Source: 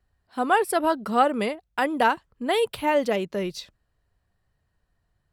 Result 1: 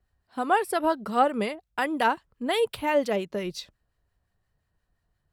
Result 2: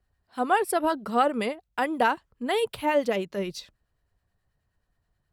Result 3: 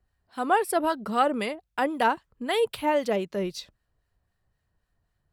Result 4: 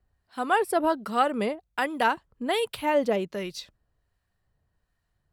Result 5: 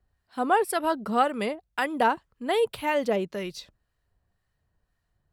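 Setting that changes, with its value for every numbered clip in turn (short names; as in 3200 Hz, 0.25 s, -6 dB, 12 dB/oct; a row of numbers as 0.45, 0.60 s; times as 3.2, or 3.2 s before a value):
harmonic tremolo, rate: 5.7, 9.4, 3.8, 1.3, 1.9 Hz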